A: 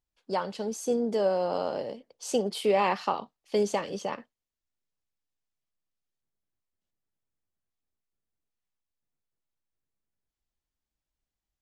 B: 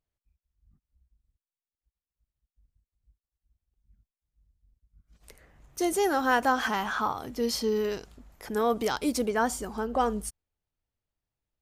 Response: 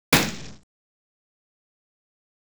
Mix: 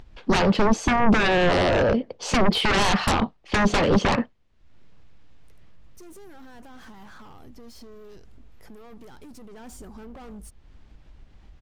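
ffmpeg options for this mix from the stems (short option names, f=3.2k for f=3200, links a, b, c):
-filter_complex "[0:a]lowpass=3.1k,acompressor=threshold=-27dB:ratio=2.5,aeval=exprs='0.15*sin(PI/2*7.08*val(0)/0.15)':c=same,volume=-2.5dB,asplit=2[a][b];[1:a]alimiter=limit=-22.5dB:level=0:latency=1:release=17,asoftclip=type=hard:threshold=-34dB,adelay=200,volume=-15dB,afade=t=in:st=9.49:d=0.23:silence=0.421697[c];[b]apad=whole_len=520902[d];[c][d]sidechaincompress=threshold=-42dB:ratio=8:attack=16:release=1330[e];[a][e]amix=inputs=2:normalize=0,lowshelf=f=290:g=11,acompressor=mode=upward:threshold=-34dB:ratio=2.5"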